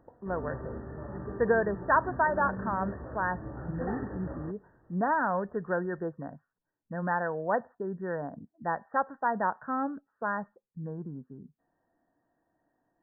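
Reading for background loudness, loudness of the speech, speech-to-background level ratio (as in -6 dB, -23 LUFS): -40.0 LUFS, -32.0 LUFS, 8.0 dB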